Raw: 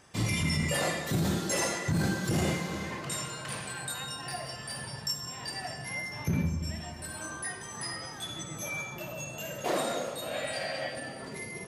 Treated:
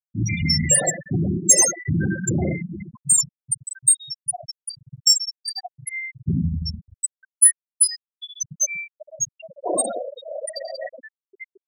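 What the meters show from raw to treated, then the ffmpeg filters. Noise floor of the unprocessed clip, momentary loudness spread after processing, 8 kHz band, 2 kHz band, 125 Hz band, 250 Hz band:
−43 dBFS, 18 LU, +18.5 dB, +2.0 dB, +6.5 dB, +6.0 dB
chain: -af "afftfilt=real='re*gte(hypot(re,im),0.0891)':imag='im*gte(hypot(re,im),0.0891)':win_size=1024:overlap=0.75,acontrast=50,aexciter=amount=5.3:drive=9.4:freq=5900,volume=1dB"

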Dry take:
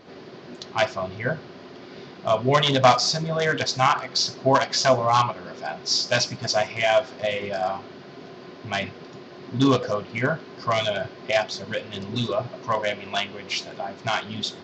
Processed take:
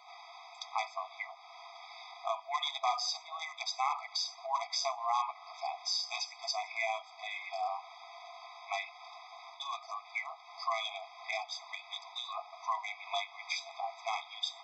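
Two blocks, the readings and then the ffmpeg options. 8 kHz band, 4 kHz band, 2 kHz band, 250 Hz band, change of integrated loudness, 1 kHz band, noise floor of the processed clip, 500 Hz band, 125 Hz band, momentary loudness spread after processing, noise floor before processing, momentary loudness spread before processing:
can't be measured, −11.5 dB, −13.0 dB, below −40 dB, −13.5 dB, −11.0 dB, −55 dBFS, −20.5 dB, below −40 dB, 16 LU, −43 dBFS, 22 LU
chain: -af "acompressor=threshold=-33dB:ratio=2.5,afftfilt=real='re*eq(mod(floor(b*sr/1024/650),2),1)':imag='im*eq(mod(floor(b*sr/1024/650),2),1)':win_size=1024:overlap=0.75"

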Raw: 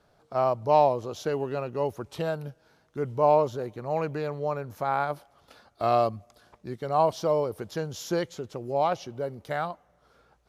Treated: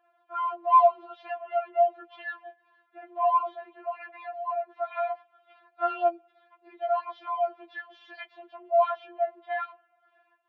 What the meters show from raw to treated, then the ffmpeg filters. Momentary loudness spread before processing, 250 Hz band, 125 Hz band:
14 LU, −16.5 dB, below −40 dB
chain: -af "highpass=frequency=310:width_type=q:width=0.5412,highpass=frequency=310:width_type=q:width=1.307,lowpass=frequency=3000:width_type=q:width=0.5176,lowpass=frequency=3000:width_type=q:width=0.7071,lowpass=frequency=3000:width_type=q:width=1.932,afreqshift=120,afftfilt=real='re*4*eq(mod(b,16),0)':imag='im*4*eq(mod(b,16),0)':win_size=2048:overlap=0.75,volume=1dB"

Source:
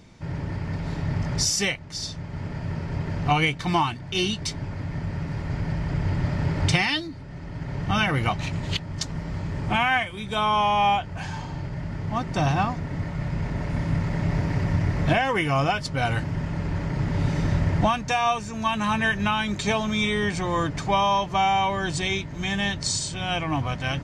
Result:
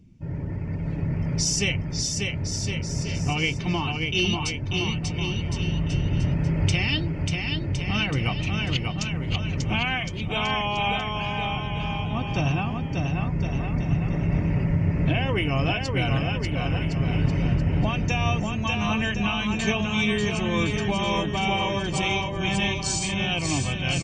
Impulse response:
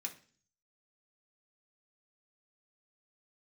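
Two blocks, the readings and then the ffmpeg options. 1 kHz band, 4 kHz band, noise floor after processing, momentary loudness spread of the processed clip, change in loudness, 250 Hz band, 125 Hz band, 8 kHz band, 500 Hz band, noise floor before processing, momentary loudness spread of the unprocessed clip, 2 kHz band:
−6.0 dB, +1.5 dB, −30 dBFS, 4 LU, 0.0 dB, +1.5 dB, +1.5 dB, +1.0 dB, −1.0 dB, −37 dBFS, 10 LU, −0.5 dB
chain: -af "alimiter=limit=-13.5dB:level=0:latency=1:release=274,highshelf=frequency=4300:gain=-5,afftdn=noise_reduction=17:noise_floor=-44,firequalizer=gain_entry='entry(350,0);entry(500,-1);entry(790,-7);entry(1800,-6);entry(2700,7);entry(3800,-4);entry(5700,4)':delay=0.05:min_phase=1,aecho=1:1:590|1062|1440|1742|1983:0.631|0.398|0.251|0.158|0.1"

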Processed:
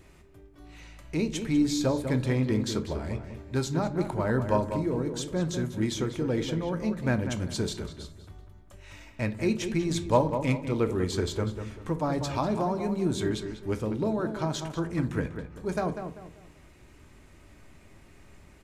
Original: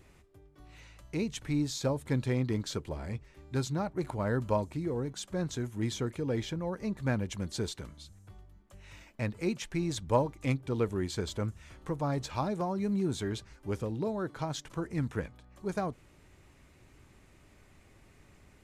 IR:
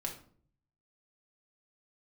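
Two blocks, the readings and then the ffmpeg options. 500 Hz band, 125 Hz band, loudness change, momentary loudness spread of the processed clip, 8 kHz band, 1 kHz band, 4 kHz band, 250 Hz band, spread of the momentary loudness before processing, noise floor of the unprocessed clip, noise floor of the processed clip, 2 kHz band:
+5.0 dB, +3.5 dB, +4.5 dB, 10 LU, +4.0 dB, +4.5 dB, +4.5 dB, +5.5 dB, 9 LU, −60 dBFS, −54 dBFS, +4.5 dB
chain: -filter_complex "[0:a]asplit=2[link_01][link_02];[link_02]adelay=195,lowpass=frequency=2500:poles=1,volume=-8dB,asplit=2[link_03][link_04];[link_04]adelay=195,lowpass=frequency=2500:poles=1,volume=0.33,asplit=2[link_05][link_06];[link_06]adelay=195,lowpass=frequency=2500:poles=1,volume=0.33,asplit=2[link_07][link_08];[link_08]adelay=195,lowpass=frequency=2500:poles=1,volume=0.33[link_09];[link_01][link_03][link_05][link_07][link_09]amix=inputs=5:normalize=0,asplit=2[link_10][link_11];[1:a]atrim=start_sample=2205,asetrate=52920,aresample=44100[link_12];[link_11][link_12]afir=irnorm=-1:irlink=0,volume=-1.5dB[link_13];[link_10][link_13]amix=inputs=2:normalize=0"

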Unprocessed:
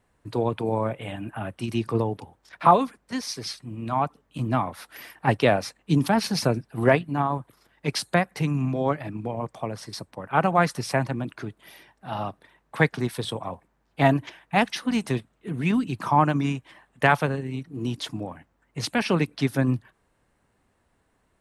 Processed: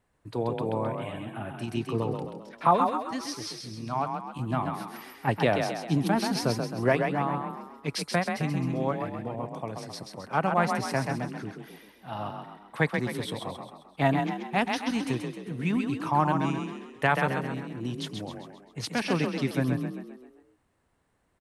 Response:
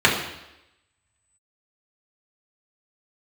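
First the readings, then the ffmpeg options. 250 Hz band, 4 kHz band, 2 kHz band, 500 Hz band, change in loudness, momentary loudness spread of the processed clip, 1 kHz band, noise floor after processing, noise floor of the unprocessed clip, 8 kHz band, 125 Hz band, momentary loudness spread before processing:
−3.0 dB, −3.5 dB, −3.5 dB, −3.5 dB, −3.5 dB, 13 LU, −3.5 dB, −70 dBFS, −70 dBFS, −3.5 dB, −4.0 dB, 13 LU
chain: -filter_complex "[0:a]asplit=7[link_01][link_02][link_03][link_04][link_05][link_06][link_07];[link_02]adelay=132,afreqshift=31,volume=-5dB[link_08];[link_03]adelay=264,afreqshift=62,volume=-11.4dB[link_09];[link_04]adelay=396,afreqshift=93,volume=-17.8dB[link_10];[link_05]adelay=528,afreqshift=124,volume=-24.1dB[link_11];[link_06]adelay=660,afreqshift=155,volume=-30.5dB[link_12];[link_07]adelay=792,afreqshift=186,volume=-36.9dB[link_13];[link_01][link_08][link_09][link_10][link_11][link_12][link_13]amix=inputs=7:normalize=0,volume=-5dB"

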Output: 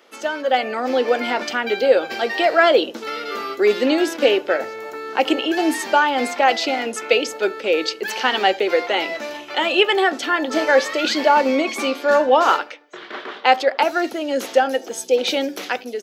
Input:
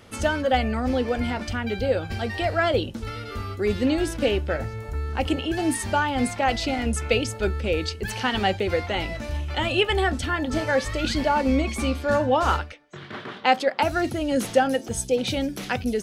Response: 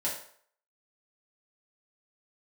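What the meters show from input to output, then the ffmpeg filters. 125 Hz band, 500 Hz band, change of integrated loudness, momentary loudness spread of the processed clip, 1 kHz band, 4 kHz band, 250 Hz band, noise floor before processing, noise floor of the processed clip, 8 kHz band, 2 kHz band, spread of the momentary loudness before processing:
below −20 dB, +6.5 dB, +5.5 dB, 10 LU, +6.5 dB, +6.5 dB, +1.5 dB, −40 dBFS, −39 dBFS, +1.5 dB, +6.5 dB, 8 LU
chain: -filter_complex "[0:a]highpass=frequency=320:width=0.5412,highpass=frequency=320:width=1.3066,equalizer=frequency=9200:width=3.3:gain=-14,dynaudnorm=framelen=120:gausssize=9:maxgain=11.5dB,asplit=2[link_01][link_02];[link_02]adelay=75,lowpass=frequency=820:poles=1,volume=-20dB,asplit=2[link_03][link_04];[link_04]adelay=75,lowpass=frequency=820:poles=1,volume=0.53,asplit=2[link_05][link_06];[link_06]adelay=75,lowpass=frequency=820:poles=1,volume=0.53,asplit=2[link_07][link_08];[link_08]adelay=75,lowpass=frequency=820:poles=1,volume=0.53[link_09];[link_01][link_03][link_05][link_07][link_09]amix=inputs=5:normalize=0,volume=-1dB"

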